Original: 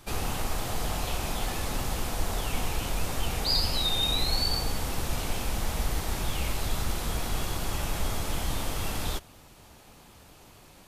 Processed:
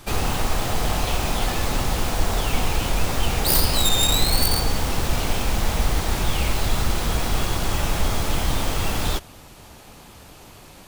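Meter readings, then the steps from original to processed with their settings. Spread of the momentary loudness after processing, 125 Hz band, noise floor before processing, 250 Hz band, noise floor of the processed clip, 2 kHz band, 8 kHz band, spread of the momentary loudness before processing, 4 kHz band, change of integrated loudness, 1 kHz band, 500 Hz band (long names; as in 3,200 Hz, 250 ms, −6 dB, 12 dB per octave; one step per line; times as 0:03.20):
6 LU, +8.0 dB, −53 dBFS, +8.0 dB, −45 dBFS, +8.0 dB, +8.5 dB, 7 LU, +5.0 dB, +7.5 dB, +8.0 dB, +8.0 dB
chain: stylus tracing distortion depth 0.21 ms
level +8 dB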